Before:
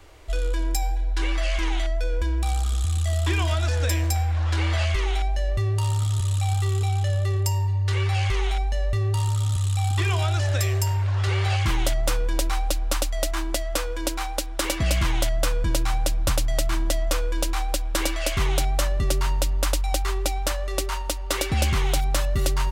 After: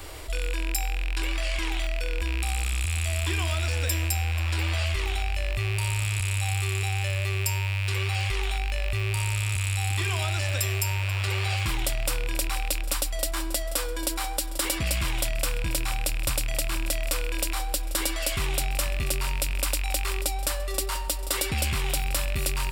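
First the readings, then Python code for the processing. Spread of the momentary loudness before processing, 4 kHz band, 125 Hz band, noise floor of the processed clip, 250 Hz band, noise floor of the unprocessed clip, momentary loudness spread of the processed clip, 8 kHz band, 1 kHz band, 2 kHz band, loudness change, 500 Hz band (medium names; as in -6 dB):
4 LU, 0.0 dB, -5.0 dB, -30 dBFS, -5.0 dB, -28 dBFS, 3 LU, +1.0 dB, -4.5 dB, +1.5 dB, -2.5 dB, -5.0 dB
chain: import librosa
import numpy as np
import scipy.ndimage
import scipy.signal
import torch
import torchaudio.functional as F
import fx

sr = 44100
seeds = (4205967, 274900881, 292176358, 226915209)

y = fx.rattle_buzz(x, sr, strikes_db=-22.0, level_db=-18.0)
y = fx.high_shelf(y, sr, hz=4900.0, db=11.5)
y = fx.notch(y, sr, hz=6300.0, q=5.7)
y = fx.echo_feedback(y, sr, ms=485, feedback_pct=48, wet_db=-18.5)
y = fx.env_flatten(y, sr, amount_pct=50)
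y = F.gain(torch.from_numpy(y), -7.5).numpy()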